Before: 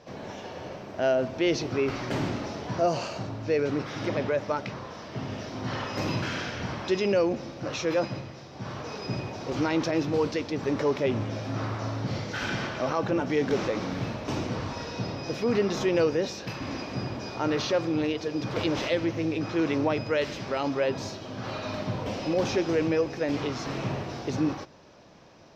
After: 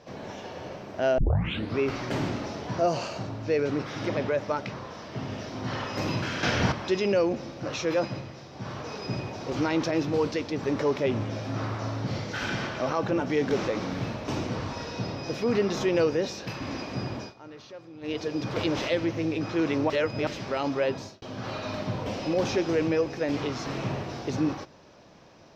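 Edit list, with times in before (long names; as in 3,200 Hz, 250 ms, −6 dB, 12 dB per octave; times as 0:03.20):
0:01.18: tape start 0.61 s
0:06.43–0:06.72: clip gain +9 dB
0:17.20–0:18.15: duck −18.5 dB, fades 0.14 s
0:19.90–0:20.27: reverse
0:20.89–0:21.22: fade out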